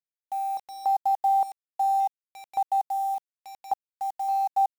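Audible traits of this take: random-step tremolo, depth 95%; a quantiser's noise floor 8-bit, dither none; MP3

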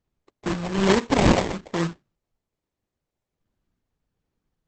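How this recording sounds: phasing stages 6, 1.2 Hz, lowest notch 350–2800 Hz; aliases and images of a low sample rate 1.4 kHz, jitter 20%; Opus

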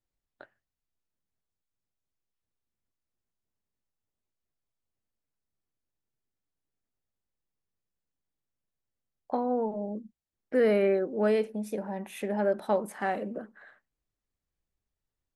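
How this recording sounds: noise floor -89 dBFS; spectral tilt -3.0 dB/octave

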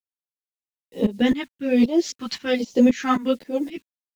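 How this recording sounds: a quantiser's noise floor 10-bit, dither none; phasing stages 2, 1.2 Hz, lowest notch 490–1600 Hz; tremolo saw up 3.8 Hz, depth 90%; a shimmering, thickened sound

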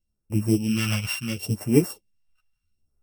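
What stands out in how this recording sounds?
a buzz of ramps at a fixed pitch in blocks of 16 samples; phasing stages 2, 0.73 Hz, lowest notch 300–3500 Hz; random-step tremolo; a shimmering, thickened sound

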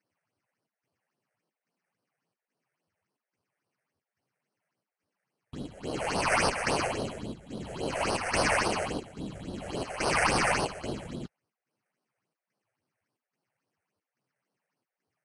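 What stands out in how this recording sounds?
aliases and images of a low sample rate 3.6 kHz, jitter 0%; chopped level 1.2 Hz, depth 60%, duty 80%; phasing stages 6, 3.6 Hz, lowest notch 260–2200 Hz; Vorbis

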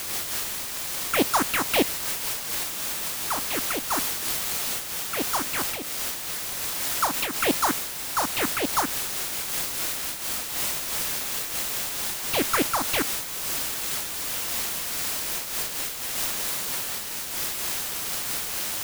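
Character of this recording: aliases and images of a low sample rate 8 kHz; phasing stages 4, 3.5 Hz, lowest notch 400–1400 Hz; a quantiser's noise floor 6-bit, dither triangular; random flutter of the level

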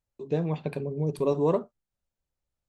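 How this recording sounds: noise floor -89 dBFS; spectral tilt -5.0 dB/octave

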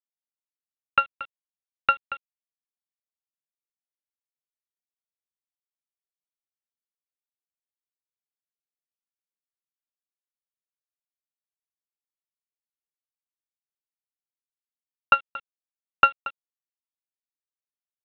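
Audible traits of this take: a buzz of ramps at a fixed pitch in blocks of 32 samples; random-step tremolo; a quantiser's noise floor 8-bit, dither none; µ-law

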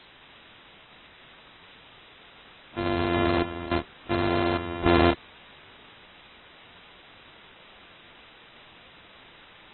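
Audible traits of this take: a buzz of ramps at a fixed pitch in blocks of 128 samples; random-step tremolo, depth 90%; a quantiser's noise floor 8-bit, dither triangular; AAC

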